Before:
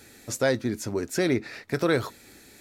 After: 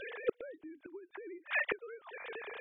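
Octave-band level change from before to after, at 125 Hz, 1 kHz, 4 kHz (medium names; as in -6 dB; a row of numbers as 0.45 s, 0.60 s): under -35 dB, -12.0 dB, -15.0 dB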